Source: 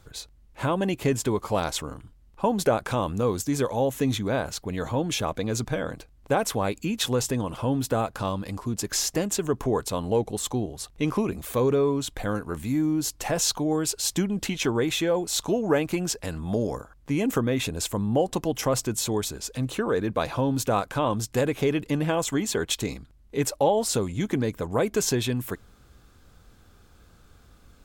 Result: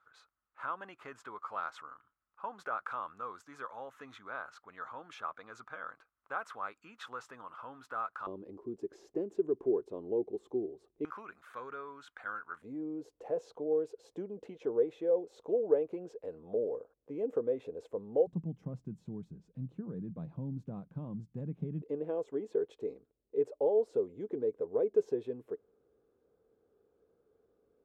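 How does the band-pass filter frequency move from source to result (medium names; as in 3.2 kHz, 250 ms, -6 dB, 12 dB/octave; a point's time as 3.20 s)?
band-pass filter, Q 6.3
1.3 kHz
from 8.27 s 380 Hz
from 11.05 s 1.4 kHz
from 12.62 s 470 Hz
from 18.27 s 170 Hz
from 21.82 s 440 Hz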